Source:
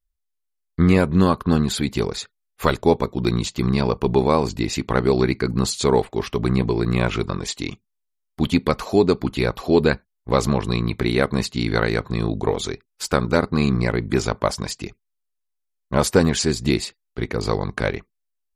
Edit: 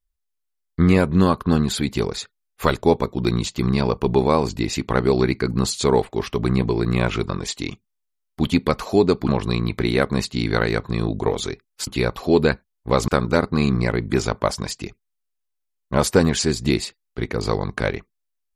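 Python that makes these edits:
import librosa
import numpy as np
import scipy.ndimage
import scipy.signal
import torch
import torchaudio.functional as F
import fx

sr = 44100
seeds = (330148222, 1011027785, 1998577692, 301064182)

y = fx.edit(x, sr, fx.move(start_s=9.28, length_s=1.21, to_s=13.08), tone=tone)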